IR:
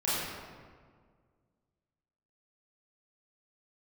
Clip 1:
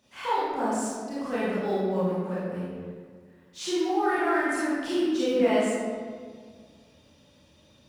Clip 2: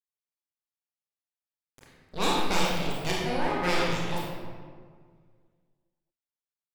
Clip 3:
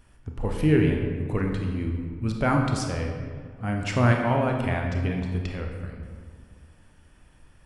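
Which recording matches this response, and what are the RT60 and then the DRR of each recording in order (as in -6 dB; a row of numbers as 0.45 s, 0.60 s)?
1; 1.8 s, 1.8 s, 1.8 s; -11.0 dB, -5.0 dB, 1.5 dB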